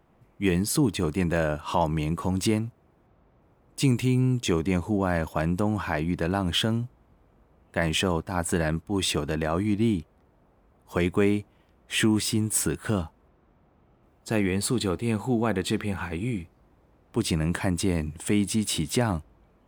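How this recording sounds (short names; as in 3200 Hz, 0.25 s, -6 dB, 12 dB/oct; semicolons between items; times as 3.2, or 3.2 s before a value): noise floor -62 dBFS; spectral tilt -5.0 dB/oct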